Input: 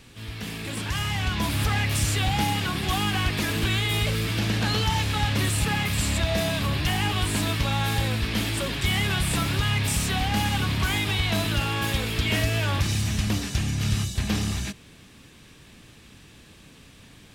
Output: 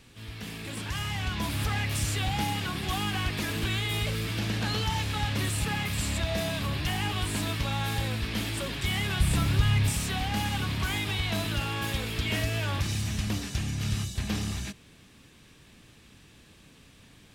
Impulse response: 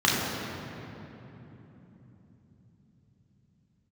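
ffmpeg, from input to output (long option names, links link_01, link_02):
-filter_complex "[0:a]asettb=1/sr,asplit=3[link_01][link_02][link_03];[link_01]atrim=end=9.204[link_04];[link_02]atrim=start=9.2:end=9.91,asetpts=PTS-STARTPTS,afade=type=in:duration=0.004:curve=qsin,afade=type=out:start_time=0.706:duration=0.004:curve=qsin,lowshelf=frequency=140:gain=11[link_05];[link_03]atrim=start=9.906[link_06];[link_04][link_05]acrossfade=duration=0.004:curve1=hsin:curve2=qsin[link_07];[link_07][link_06]acrossfade=duration=0.004:curve1=qsin:curve2=hsin,volume=-5dB"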